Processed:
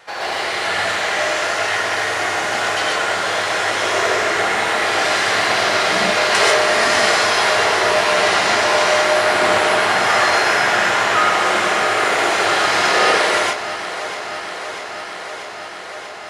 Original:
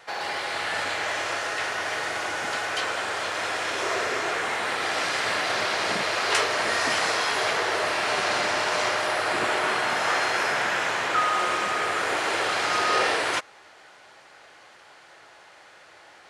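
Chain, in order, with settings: on a send: echo with dull and thin repeats by turns 0.32 s, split 810 Hz, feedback 88%, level -12 dB; on the sum: non-linear reverb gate 0.16 s rising, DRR -3.5 dB; gain +3.5 dB

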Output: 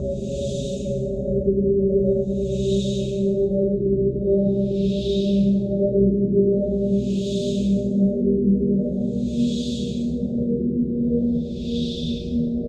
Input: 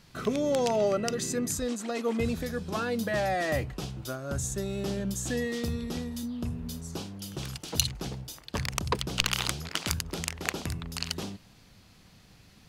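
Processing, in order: rattling part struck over -31 dBFS, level -24 dBFS; Chebyshev band-stop 580–3600 Hz, order 4; comb 5.1 ms, depth 94%; Paulstretch 9.3×, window 1.00 s, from 4.3; LFO low-pass sine 0.44 Hz 340–3300 Hz; gain +6.5 dB

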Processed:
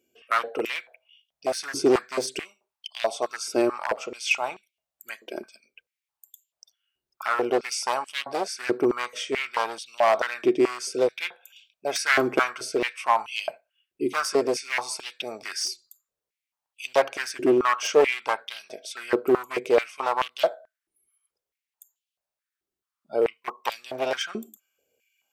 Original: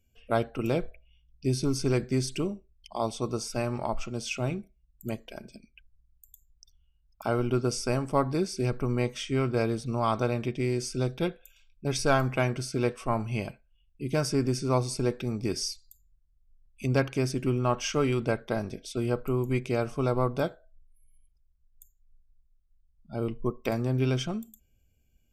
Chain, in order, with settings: one-sided fold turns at -25 dBFS; stepped high-pass 4.6 Hz 350–3000 Hz; gain +3.5 dB

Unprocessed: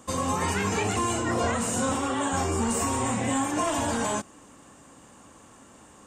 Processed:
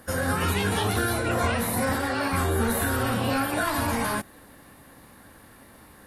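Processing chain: formant shift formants +6 st; low shelf 110 Hz +10.5 dB

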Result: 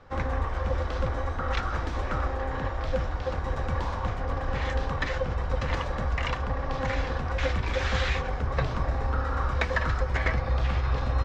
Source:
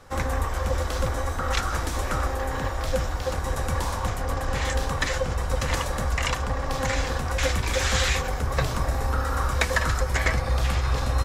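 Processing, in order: air absorption 210 m; gain -2 dB

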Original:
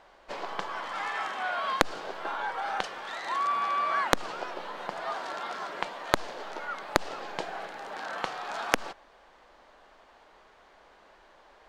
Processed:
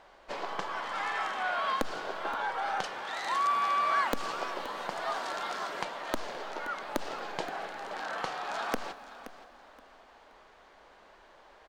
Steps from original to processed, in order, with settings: 3.16–5.84 high shelf 5100 Hz +7.5 dB; soft clip -16.5 dBFS, distortion -7 dB; feedback echo 0.524 s, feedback 24%, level -15 dB; reverb RT60 4.4 s, pre-delay 6 ms, DRR 17 dB

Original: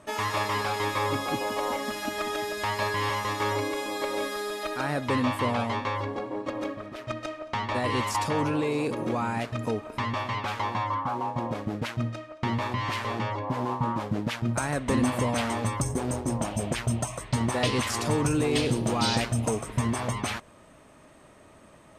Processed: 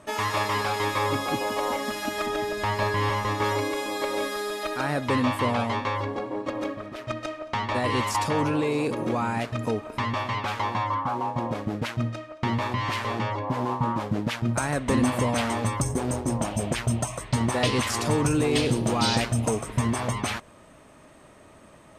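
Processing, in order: 2.26–3.44 tilt -1.5 dB/oct; gain +2 dB

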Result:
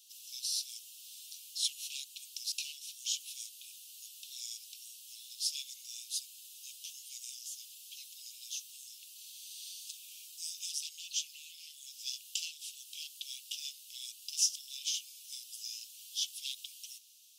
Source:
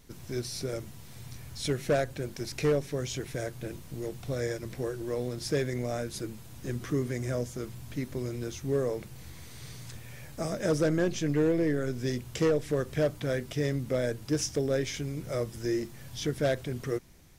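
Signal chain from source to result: steep high-pass 2700 Hz 96 dB/oct; gain +4.5 dB

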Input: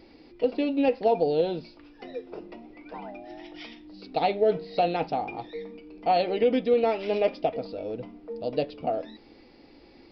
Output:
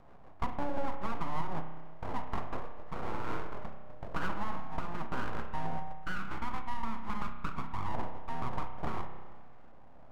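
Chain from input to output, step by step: per-bin compression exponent 0.6; 5.92–7.93 HPF 910 Hz -> 380 Hz 12 dB/oct; compressor 12:1, threshold -27 dBFS, peak gain reduction 12 dB; brick-wall FIR low-pass 1800 Hz; gate -33 dBFS, range -15 dB; rotary speaker horn 6.3 Hz, later 1 Hz, at 1.27; full-wave rectifier; spring tank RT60 1.4 s, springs 31 ms, chirp 55 ms, DRR 6.5 dB

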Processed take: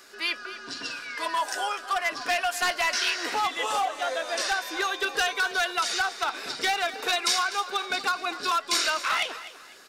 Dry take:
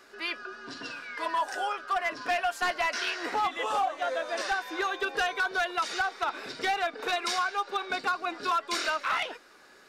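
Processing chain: high shelf 3100 Hz +12 dB; feedback echo 0.249 s, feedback 31%, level -15 dB

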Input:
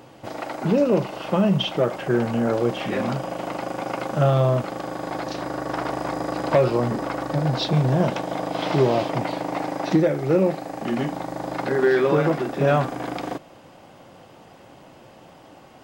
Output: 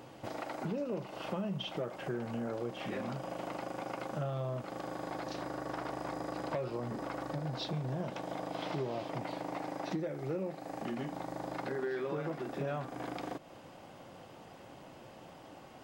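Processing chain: compressor 3:1, threshold -33 dBFS, peak gain reduction 14.5 dB; gain -5 dB

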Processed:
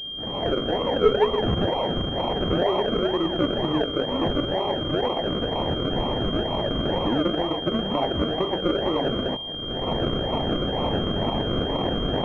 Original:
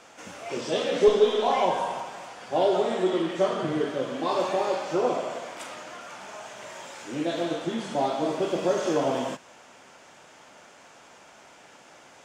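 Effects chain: recorder AGC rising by 35 dB/s; decimation with a swept rate 39×, swing 60% 2.1 Hz; pulse-width modulation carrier 3200 Hz

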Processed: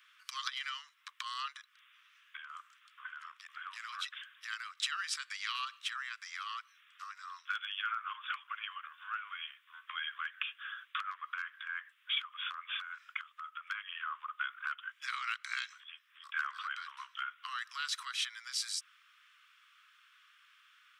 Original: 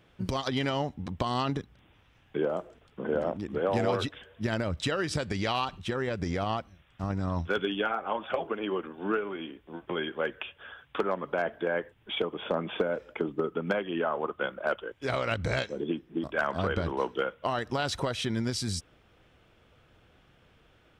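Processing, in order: compressor, threshold -32 dBFS, peak gain reduction 10 dB; steep high-pass 1100 Hz 96 dB/oct; gain +3 dB

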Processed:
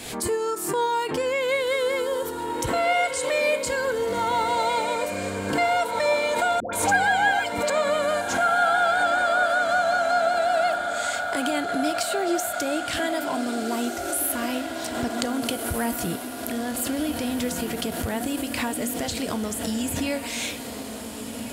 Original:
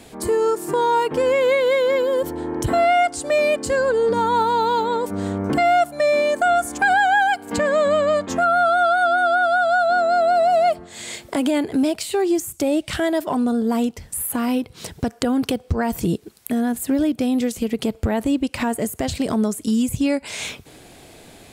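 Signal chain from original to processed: tilt shelf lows -4.5 dB, about 1200 Hz; diffused feedback echo 1.649 s, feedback 58%, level -7 dB; flange 0.16 Hz, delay 8 ms, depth 9.9 ms, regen +81%; 6.6–7.7 dispersion highs, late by 0.13 s, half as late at 900 Hz; backwards sustainer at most 54 dB/s

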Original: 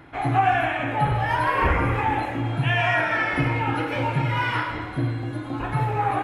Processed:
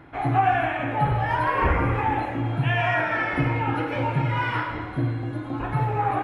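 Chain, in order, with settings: high shelf 3000 Hz -8.5 dB

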